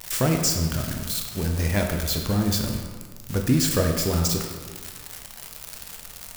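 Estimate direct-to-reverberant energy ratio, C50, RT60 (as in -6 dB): 2.0 dB, 4.5 dB, 1.7 s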